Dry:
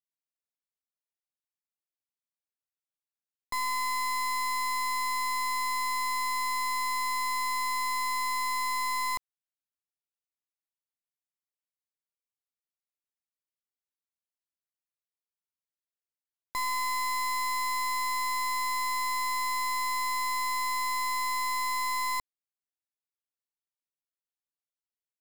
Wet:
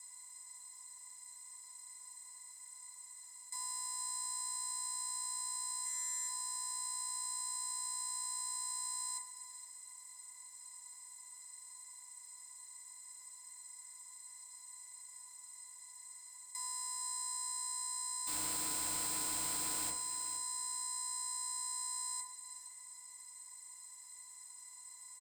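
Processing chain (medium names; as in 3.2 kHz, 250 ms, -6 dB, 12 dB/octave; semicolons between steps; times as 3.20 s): spectral levelling over time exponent 0.2; band-pass filter 7.9 kHz, Q 19; comb 6.1 ms, depth 45%; frequency shift -13 Hz; 5.81–6.28 s: flutter echo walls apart 7.1 m, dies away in 0.76 s; 18.27–19.90 s: companded quantiser 4-bit; feedback delay 464 ms, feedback 28%, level -13 dB; FDN reverb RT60 0.49 s, low-frequency decay 1×, high-frequency decay 0.3×, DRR -6 dB; trim +12.5 dB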